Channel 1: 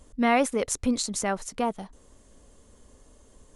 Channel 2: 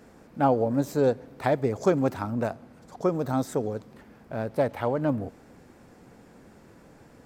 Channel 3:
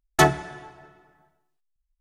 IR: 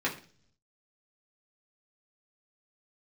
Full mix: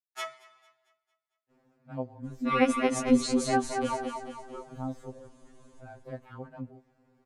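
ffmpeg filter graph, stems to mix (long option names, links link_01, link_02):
-filter_complex "[0:a]adelay=2250,volume=2dB,asplit=2[link_01][link_02];[link_02]volume=-5.5dB[link_03];[1:a]adelay=1500,volume=-13dB[link_04];[2:a]highpass=1400,agate=range=-33dB:threshold=-52dB:ratio=3:detection=peak,volume=-9dB,asplit=2[link_05][link_06];[link_06]volume=-22.5dB[link_07];[link_03][link_07]amix=inputs=2:normalize=0,aecho=0:1:225|450|675|900|1125|1350:1|0.46|0.212|0.0973|0.0448|0.0206[link_08];[link_01][link_04][link_05][link_08]amix=inputs=4:normalize=0,lowpass=frequency=3400:poles=1,afftfilt=real='re*2.45*eq(mod(b,6),0)':imag='im*2.45*eq(mod(b,6),0)':win_size=2048:overlap=0.75"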